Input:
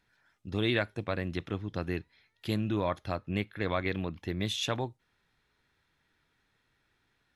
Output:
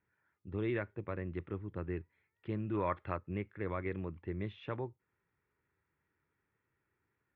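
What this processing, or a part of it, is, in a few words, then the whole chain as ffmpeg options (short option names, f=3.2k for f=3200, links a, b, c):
bass cabinet: -filter_complex "[0:a]highpass=72,equalizer=f=83:t=q:w=4:g=5,equalizer=f=240:t=q:w=4:g=-4,equalizer=f=380:t=q:w=4:g=4,equalizer=f=710:t=q:w=4:g=-8,equalizer=f=1.6k:t=q:w=4:g=-4,lowpass=f=2.1k:w=0.5412,lowpass=f=2.1k:w=1.3066,asplit=3[a][b][c];[a]afade=t=out:st=2.73:d=0.02[d];[b]equalizer=f=2.1k:w=0.35:g=8.5,afade=t=in:st=2.73:d=0.02,afade=t=out:st=3.17:d=0.02[e];[c]afade=t=in:st=3.17:d=0.02[f];[d][e][f]amix=inputs=3:normalize=0,volume=-6dB"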